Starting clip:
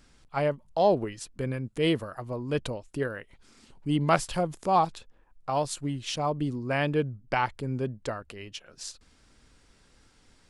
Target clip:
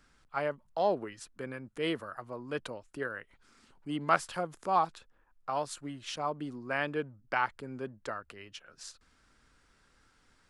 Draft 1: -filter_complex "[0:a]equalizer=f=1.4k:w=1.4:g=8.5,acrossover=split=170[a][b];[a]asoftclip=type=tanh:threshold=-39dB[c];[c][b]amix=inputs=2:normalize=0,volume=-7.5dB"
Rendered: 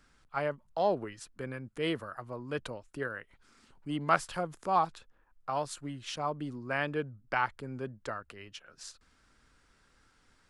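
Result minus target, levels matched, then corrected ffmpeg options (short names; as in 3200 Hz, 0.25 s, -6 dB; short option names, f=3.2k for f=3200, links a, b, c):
soft clip: distortion -7 dB
-filter_complex "[0:a]equalizer=f=1.4k:w=1.4:g=8.5,acrossover=split=170[a][b];[a]asoftclip=type=tanh:threshold=-50.5dB[c];[c][b]amix=inputs=2:normalize=0,volume=-7.5dB"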